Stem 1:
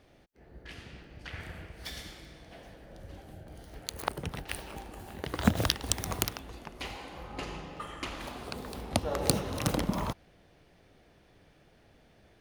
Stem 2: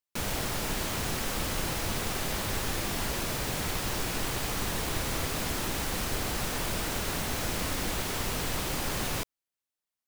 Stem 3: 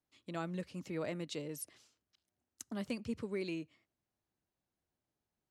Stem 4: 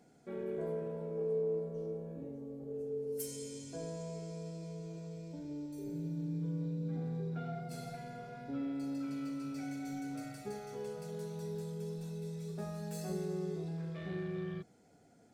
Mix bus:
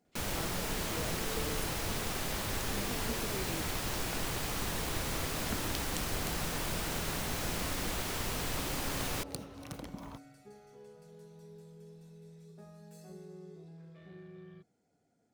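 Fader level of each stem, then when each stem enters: -15.0, -4.0, -4.5, -11.5 dB; 0.05, 0.00, 0.00, 0.00 s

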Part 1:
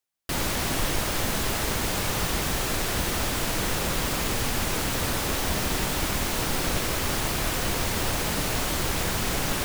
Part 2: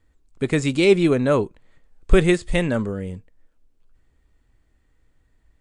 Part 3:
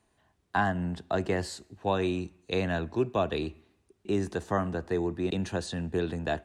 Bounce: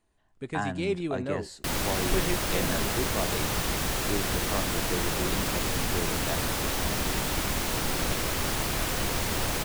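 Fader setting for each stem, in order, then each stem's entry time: -2.0, -14.0, -5.0 dB; 1.35, 0.00, 0.00 s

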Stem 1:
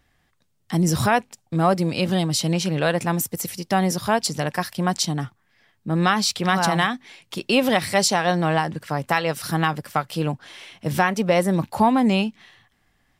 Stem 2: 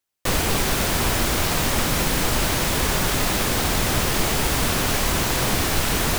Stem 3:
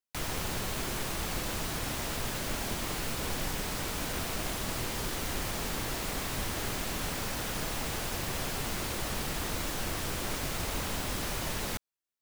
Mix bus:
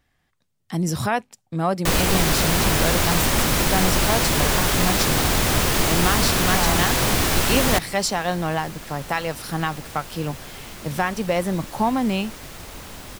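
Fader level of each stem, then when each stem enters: -3.5, +1.5, -4.0 dB; 0.00, 1.60, 2.00 s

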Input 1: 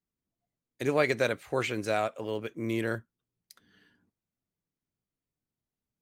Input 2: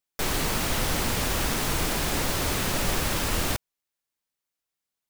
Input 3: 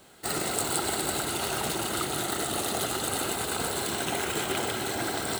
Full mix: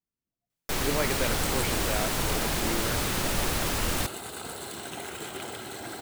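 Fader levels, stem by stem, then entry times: -4.5, -2.0, -8.0 dB; 0.00, 0.50, 0.85 s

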